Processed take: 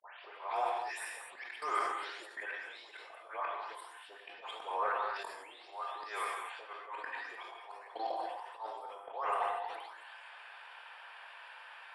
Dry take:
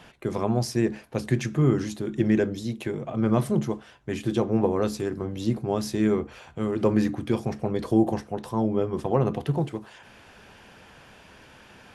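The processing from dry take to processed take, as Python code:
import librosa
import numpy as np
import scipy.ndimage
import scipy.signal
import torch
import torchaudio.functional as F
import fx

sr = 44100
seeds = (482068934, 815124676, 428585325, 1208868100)

y = fx.spec_delay(x, sr, highs='late', ms=338)
y = scipy.signal.sosfilt(scipy.signal.cheby2(4, 60, 230.0, 'highpass', fs=sr, output='sos'), y)
y = fx.level_steps(y, sr, step_db=21)
y = fx.auto_swell(y, sr, attack_ms=222.0)
y = 10.0 ** (-31.0 / 20.0) * np.tanh(y / 10.0 ** (-31.0 / 20.0))
y = scipy.signal.lfilter(np.full(7, 1.0 / 7), 1.0, y)
y = fx.rev_gated(y, sr, seeds[0], gate_ms=270, shape='flat', drr_db=1.0)
y = fx.sustainer(y, sr, db_per_s=41.0)
y = y * librosa.db_to_amplitude(10.0)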